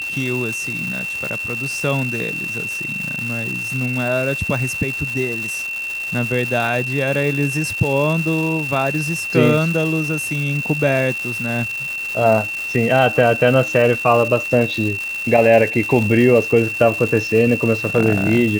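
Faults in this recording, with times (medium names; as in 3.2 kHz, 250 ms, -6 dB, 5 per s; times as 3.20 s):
crackle 570 per s -24 dBFS
whine 2.7 kHz -23 dBFS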